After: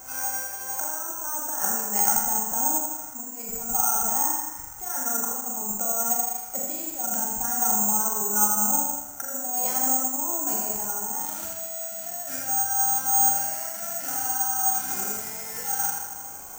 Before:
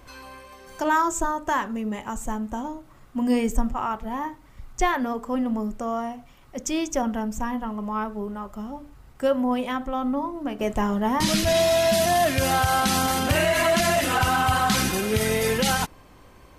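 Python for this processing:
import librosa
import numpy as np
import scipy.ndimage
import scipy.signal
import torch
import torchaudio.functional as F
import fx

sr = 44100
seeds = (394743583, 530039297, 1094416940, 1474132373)

p1 = fx.low_shelf(x, sr, hz=75.0, db=-11.5)
p2 = fx.over_compress(p1, sr, threshold_db=-33.0, ratio=-1.0)
p3 = fx.doubler(p2, sr, ms=42.0, db=-6.0)
p4 = fx.small_body(p3, sr, hz=(790.0, 1400.0), ring_ms=30, db=18)
p5 = p4 + fx.echo_feedback(p4, sr, ms=81, feedback_pct=57, wet_db=-7, dry=0)
p6 = fx.rev_schroeder(p5, sr, rt60_s=0.87, comb_ms=31, drr_db=2.5)
p7 = (np.kron(scipy.signal.resample_poly(p6, 1, 6), np.eye(6)[0]) * 6)[:len(p6)]
y = p7 * 10.0 ** (-12.0 / 20.0)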